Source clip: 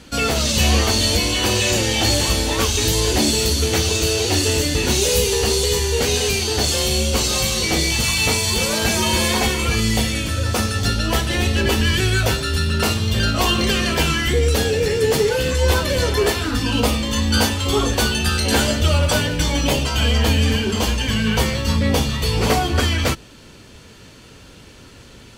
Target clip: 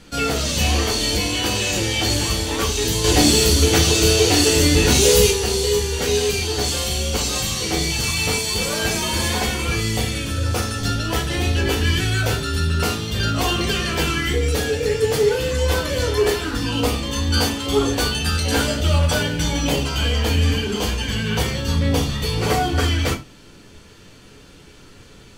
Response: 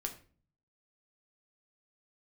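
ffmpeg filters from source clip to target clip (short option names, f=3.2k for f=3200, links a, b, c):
-filter_complex "[0:a]asettb=1/sr,asplit=3[a][b][c];[a]atrim=end=3.044[d];[b]atrim=start=3.04:end=5.31,asetpts=PTS-STARTPTS,afade=t=in:d=0.004:c=qsin,afade=t=out:st=2.266:d=0.004:c=qsin,acontrast=66[e];[c]atrim=start=5.306[f];[d][e]acrossfade=d=0.004:c1=hsin:c2=qsin[g];[g][f]acrossfade=d=0.004:c1=qsin:c2=hsin[h];[1:a]atrim=start_sample=2205,atrim=end_sample=4410[i];[h][i]afir=irnorm=-1:irlink=0,volume=-2dB"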